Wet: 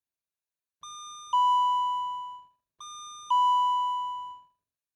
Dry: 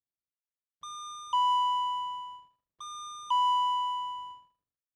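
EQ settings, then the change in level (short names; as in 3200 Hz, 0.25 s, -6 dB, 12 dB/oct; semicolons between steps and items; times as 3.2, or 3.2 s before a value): ripple EQ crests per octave 1.5, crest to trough 6 dB; 0.0 dB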